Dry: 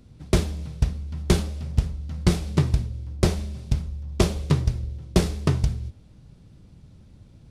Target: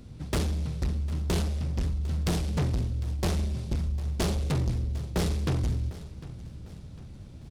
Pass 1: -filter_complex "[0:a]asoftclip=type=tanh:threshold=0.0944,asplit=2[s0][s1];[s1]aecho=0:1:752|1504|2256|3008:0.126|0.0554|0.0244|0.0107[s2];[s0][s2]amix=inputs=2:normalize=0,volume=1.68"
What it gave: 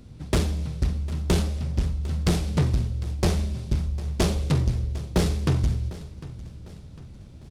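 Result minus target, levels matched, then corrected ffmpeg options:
saturation: distortion -4 dB
-filter_complex "[0:a]asoftclip=type=tanh:threshold=0.0398,asplit=2[s0][s1];[s1]aecho=0:1:752|1504|2256|3008:0.126|0.0554|0.0244|0.0107[s2];[s0][s2]amix=inputs=2:normalize=0,volume=1.68"

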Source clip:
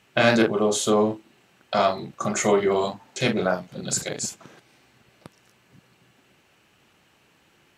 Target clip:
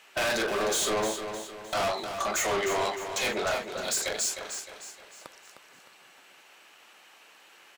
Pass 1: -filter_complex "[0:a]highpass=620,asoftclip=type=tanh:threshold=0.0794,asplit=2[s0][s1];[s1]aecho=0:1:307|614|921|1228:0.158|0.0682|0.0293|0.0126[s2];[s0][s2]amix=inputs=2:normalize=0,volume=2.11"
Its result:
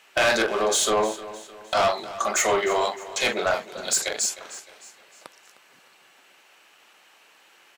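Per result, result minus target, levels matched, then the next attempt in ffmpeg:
echo-to-direct -7.5 dB; saturation: distortion -6 dB
-filter_complex "[0:a]highpass=620,asoftclip=type=tanh:threshold=0.0794,asplit=2[s0][s1];[s1]aecho=0:1:307|614|921|1228|1535:0.376|0.162|0.0695|0.0299|0.0128[s2];[s0][s2]amix=inputs=2:normalize=0,volume=2.11"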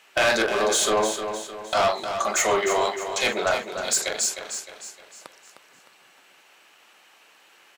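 saturation: distortion -6 dB
-filter_complex "[0:a]highpass=620,asoftclip=type=tanh:threshold=0.0251,asplit=2[s0][s1];[s1]aecho=0:1:307|614|921|1228|1535:0.376|0.162|0.0695|0.0299|0.0128[s2];[s0][s2]amix=inputs=2:normalize=0,volume=2.11"

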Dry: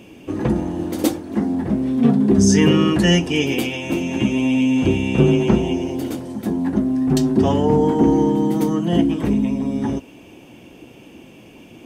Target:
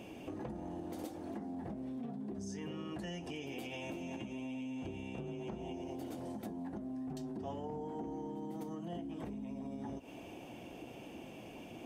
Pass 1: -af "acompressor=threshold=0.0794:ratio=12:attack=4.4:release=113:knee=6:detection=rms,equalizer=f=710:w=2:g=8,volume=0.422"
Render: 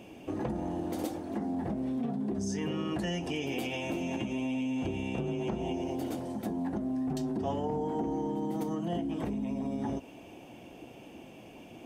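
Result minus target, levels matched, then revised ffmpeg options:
compression: peak gain reduction -9.5 dB
-af "acompressor=threshold=0.0237:ratio=12:attack=4.4:release=113:knee=6:detection=rms,equalizer=f=710:w=2:g=8,volume=0.422"

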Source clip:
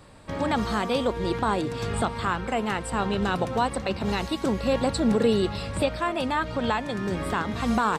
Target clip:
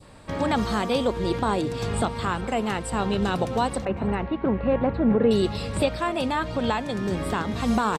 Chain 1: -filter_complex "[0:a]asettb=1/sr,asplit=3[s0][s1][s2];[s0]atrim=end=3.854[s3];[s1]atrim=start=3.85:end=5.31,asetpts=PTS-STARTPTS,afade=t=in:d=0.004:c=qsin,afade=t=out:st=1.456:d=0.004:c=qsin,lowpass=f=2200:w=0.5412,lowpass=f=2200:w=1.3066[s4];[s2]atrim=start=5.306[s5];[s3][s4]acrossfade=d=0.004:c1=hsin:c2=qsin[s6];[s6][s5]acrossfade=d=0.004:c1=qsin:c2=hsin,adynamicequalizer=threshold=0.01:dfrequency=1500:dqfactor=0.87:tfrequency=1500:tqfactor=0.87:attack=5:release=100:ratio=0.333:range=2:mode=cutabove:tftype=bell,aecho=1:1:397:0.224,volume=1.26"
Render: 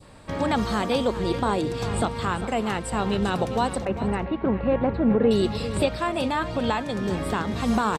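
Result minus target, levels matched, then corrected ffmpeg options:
echo-to-direct +8.5 dB
-filter_complex "[0:a]asettb=1/sr,asplit=3[s0][s1][s2];[s0]atrim=end=3.854[s3];[s1]atrim=start=3.85:end=5.31,asetpts=PTS-STARTPTS,afade=t=in:d=0.004:c=qsin,afade=t=out:st=1.456:d=0.004:c=qsin,lowpass=f=2200:w=0.5412,lowpass=f=2200:w=1.3066[s4];[s2]atrim=start=5.306[s5];[s3][s4]acrossfade=d=0.004:c1=hsin:c2=qsin[s6];[s6][s5]acrossfade=d=0.004:c1=qsin:c2=hsin,adynamicequalizer=threshold=0.01:dfrequency=1500:dqfactor=0.87:tfrequency=1500:tqfactor=0.87:attack=5:release=100:ratio=0.333:range=2:mode=cutabove:tftype=bell,aecho=1:1:397:0.0841,volume=1.26"

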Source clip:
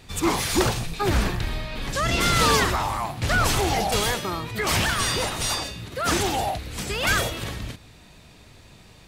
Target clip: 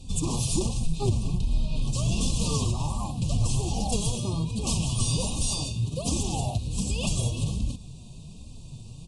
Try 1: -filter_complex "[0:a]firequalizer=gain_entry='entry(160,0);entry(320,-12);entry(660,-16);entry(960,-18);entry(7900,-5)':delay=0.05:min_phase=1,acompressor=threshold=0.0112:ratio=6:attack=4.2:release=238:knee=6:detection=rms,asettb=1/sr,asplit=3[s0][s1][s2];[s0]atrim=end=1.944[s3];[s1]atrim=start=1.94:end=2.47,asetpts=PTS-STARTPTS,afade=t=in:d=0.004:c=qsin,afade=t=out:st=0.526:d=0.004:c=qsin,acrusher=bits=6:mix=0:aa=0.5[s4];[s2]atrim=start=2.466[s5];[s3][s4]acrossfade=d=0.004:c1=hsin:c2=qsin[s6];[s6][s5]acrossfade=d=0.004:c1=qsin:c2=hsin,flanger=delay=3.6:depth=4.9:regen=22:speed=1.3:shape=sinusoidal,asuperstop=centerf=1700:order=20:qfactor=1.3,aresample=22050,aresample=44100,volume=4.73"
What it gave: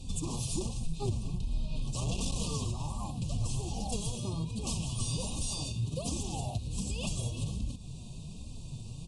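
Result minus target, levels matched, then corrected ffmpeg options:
compression: peak gain reduction +8 dB
-filter_complex "[0:a]firequalizer=gain_entry='entry(160,0);entry(320,-12);entry(660,-16);entry(960,-18);entry(7900,-5)':delay=0.05:min_phase=1,acompressor=threshold=0.0335:ratio=6:attack=4.2:release=238:knee=6:detection=rms,asettb=1/sr,asplit=3[s0][s1][s2];[s0]atrim=end=1.944[s3];[s1]atrim=start=1.94:end=2.47,asetpts=PTS-STARTPTS,afade=t=in:d=0.004:c=qsin,afade=t=out:st=0.526:d=0.004:c=qsin,acrusher=bits=6:mix=0:aa=0.5[s4];[s2]atrim=start=2.466[s5];[s3][s4]acrossfade=d=0.004:c1=hsin:c2=qsin[s6];[s6][s5]acrossfade=d=0.004:c1=qsin:c2=hsin,flanger=delay=3.6:depth=4.9:regen=22:speed=1.3:shape=sinusoidal,asuperstop=centerf=1700:order=20:qfactor=1.3,aresample=22050,aresample=44100,volume=4.73"

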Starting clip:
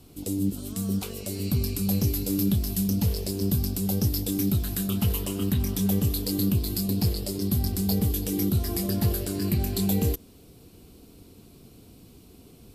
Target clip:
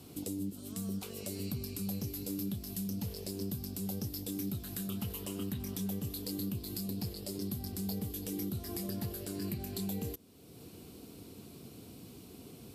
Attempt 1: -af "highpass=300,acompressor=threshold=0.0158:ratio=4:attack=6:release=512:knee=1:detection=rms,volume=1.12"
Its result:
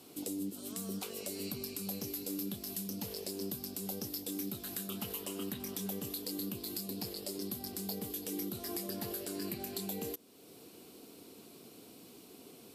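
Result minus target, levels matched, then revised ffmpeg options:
125 Hz band -8.0 dB
-af "highpass=100,acompressor=threshold=0.0158:ratio=4:attack=6:release=512:knee=1:detection=rms,volume=1.12"

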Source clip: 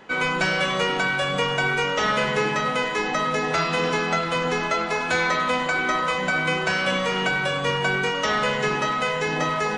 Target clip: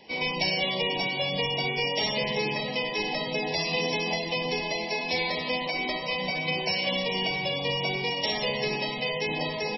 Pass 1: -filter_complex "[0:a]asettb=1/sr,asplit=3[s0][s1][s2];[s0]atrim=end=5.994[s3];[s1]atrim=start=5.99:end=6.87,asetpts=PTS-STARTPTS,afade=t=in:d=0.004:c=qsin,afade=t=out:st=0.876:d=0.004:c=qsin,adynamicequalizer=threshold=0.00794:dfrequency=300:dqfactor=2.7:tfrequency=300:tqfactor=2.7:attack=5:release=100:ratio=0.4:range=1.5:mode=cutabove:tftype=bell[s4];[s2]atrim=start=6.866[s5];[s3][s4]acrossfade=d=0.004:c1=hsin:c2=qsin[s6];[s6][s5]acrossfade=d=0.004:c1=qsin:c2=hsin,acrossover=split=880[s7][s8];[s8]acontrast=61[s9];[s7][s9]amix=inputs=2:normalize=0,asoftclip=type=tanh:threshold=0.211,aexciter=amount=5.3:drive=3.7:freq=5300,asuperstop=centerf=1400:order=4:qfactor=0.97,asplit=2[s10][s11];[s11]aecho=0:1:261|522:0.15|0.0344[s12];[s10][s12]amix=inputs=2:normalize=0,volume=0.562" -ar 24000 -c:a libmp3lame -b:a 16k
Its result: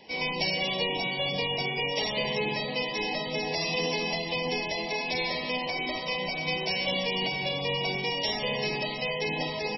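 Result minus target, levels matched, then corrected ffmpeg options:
saturation: distortion +10 dB
-filter_complex "[0:a]asettb=1/sr,asplit=3[s0][s1][s2];[s0]atrim=end=5.994[s3];[s1]atrim=start=5.99:end=6.87,asetpts=PTS-STARTPTS,afade=t=in:d=0.004:c=qsin,afade=t=out:st=0.876:d=0.004:c=qsin,adynamicequalizer=threshold=0.00794:dfrequency=300:dqfactor=2.7:tfrequency=300:tqfactor=2.7:attack=5:release=100:ratio=0.4:range=1.5:mode=cutabove:tftype=bell[s4];[s2]atrim=start=6.866[s5];[s3][s4]acrossfade=d=0.004:c1=hsin:c2=qsin[s6];[s6][s5]acrossfade=d=0.004:c1=qsin:c2=hsin,acrossover=split=880[s7][s8];[s8]acontrast=61[s9];[s7][s9]amix=inputs=2:normalize=0,asoftclip=type=tanh:threshold=0.447,aexciter=amount=5.3:drive=3.7:freq=5300,asuperstop=centerf=1400:order=4:qfactor=0.97,asplit=2[s10][s11];[s11]aecho=0:1:261|522:0.15|0.0344[s12];[s10][s12]amix=inputs=2:normalize=0,volume=0.562" -ar 24000 -c:a libmp3lame -b:a 16k

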